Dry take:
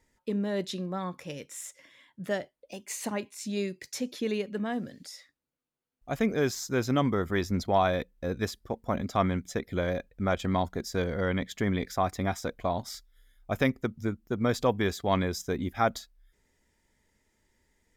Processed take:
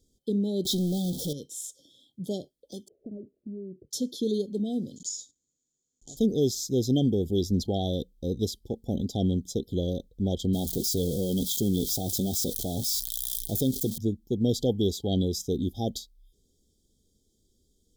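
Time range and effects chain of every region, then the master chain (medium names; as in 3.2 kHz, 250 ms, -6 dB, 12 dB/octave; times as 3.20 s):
0.65–1.33 s: jump at every zero crossing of -40 dBFS + treble shelf 9.5 kHz +8 dB + power-law waveshaper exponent 0.7
2.88–3.91 s: steep low-pass 700 Hz 96 dB/octave + compression 5:1, threshold -39 dBFS
4.96–6.17 s: block-companded coder 3-bit + compression 5:1, threshold -47 dBFS + resonant low-pass 6.9 kHz, resonance Q 15
10.53–13.98 s: zero-crossing glitches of -29.5 dBFS + flange 1.1 Hz, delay 4.4 ms, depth 2.9 ms, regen -53% + level flattener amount 50%
whole clip: FFT band-reject 850–3100 Hz; high-order bell 960 Hz -13.5 dB; trim +3.5 dB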